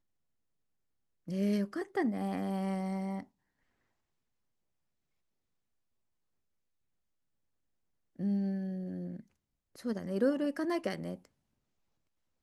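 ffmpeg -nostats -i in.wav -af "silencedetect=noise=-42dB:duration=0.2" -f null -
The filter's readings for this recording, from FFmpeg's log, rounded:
silence_start: 0.00
silence_end: 1.28 | silence_duration: 1.28
silence_start: 3.23
silence_end: 8.19 | silence_duration: 4.97
silence_start: 9.20
silence_end: 9.79 | silence_duration: 0.59
silence_start: 11.15
silence_end: 12.42 | silence_duration: 1.27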